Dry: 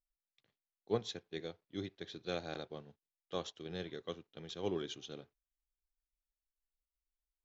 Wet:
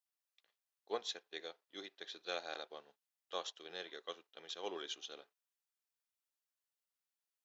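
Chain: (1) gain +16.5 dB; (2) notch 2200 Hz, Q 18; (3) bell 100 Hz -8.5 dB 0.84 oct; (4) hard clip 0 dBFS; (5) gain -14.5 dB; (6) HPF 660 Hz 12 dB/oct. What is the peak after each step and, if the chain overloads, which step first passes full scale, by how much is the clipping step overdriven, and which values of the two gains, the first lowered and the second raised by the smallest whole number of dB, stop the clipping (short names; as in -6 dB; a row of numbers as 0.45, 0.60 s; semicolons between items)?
-4.0, -4.0, -5.0, -5.0, -19.5, -25.0 dBFS; no overload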